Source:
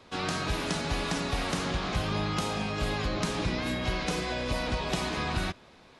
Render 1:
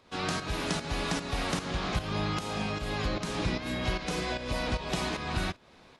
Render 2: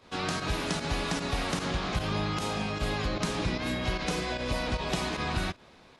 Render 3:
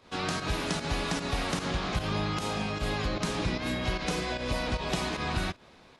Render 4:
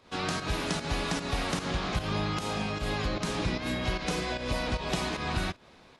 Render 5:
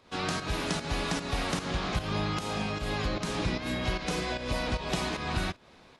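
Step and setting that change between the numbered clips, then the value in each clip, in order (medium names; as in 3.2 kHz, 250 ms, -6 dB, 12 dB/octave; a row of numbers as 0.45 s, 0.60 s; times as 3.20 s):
volume shaper, release: 344 ms, 62 ms, 99 ms, 155 ms, 228 ms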